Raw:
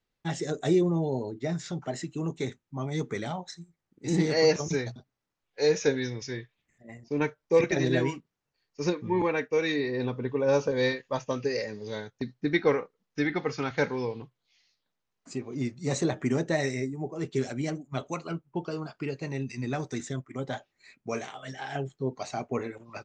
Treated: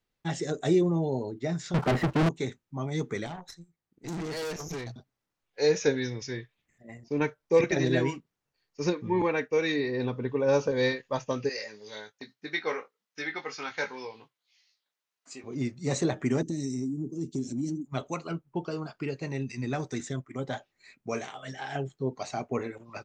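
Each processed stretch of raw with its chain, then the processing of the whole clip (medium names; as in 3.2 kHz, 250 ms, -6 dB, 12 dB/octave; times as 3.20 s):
1.74–2.29 s: square wave that keeps the level + low-pass 1.7 kHz + waveshaping leveller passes 3
3.26–4.90 s: valve stage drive 32 dB, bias 0.75 + band-stop 580 Hz
11.49–15.44 s: high-pass 1.3 kHz 6 dB/octave + doubling 19 ms -6 dB
16.42–17.86 s: FFT filter 110 Hz 0 dB, 300 Hz +9 dB, 700 Hz -29 dB, 1.3 kHz -27 dB, 3.7 kHz -8 dB, 6 kHz +4 dB + compression 2.5:1, threshold -30 dBFS
whole clip: none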